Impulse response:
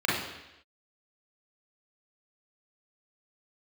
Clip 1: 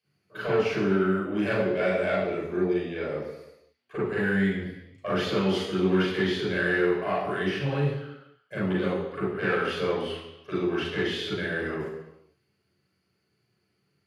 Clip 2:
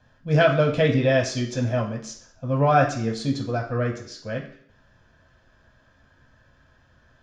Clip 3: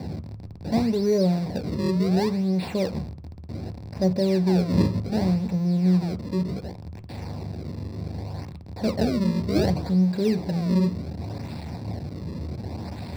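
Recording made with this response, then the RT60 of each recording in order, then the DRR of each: 1; 0.90, 0.60, 0.40 seconds; −7.0, −1.0, 9.5 decibels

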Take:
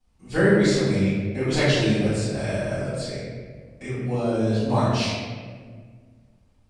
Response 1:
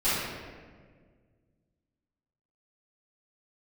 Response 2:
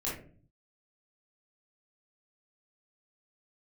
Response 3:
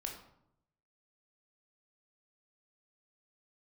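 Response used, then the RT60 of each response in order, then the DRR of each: 1; 1.7, 0.45, 0.75 seconds; −16.5, −7.5, 1.0 decibels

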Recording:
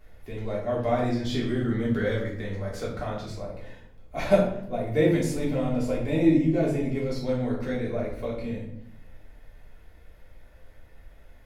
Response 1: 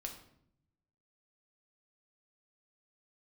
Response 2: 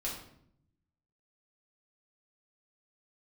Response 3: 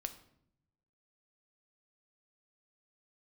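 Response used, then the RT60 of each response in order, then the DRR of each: 2; 0.70, 0.70, 0.70 seconds; 2.0, −5.5, 8.0 decibels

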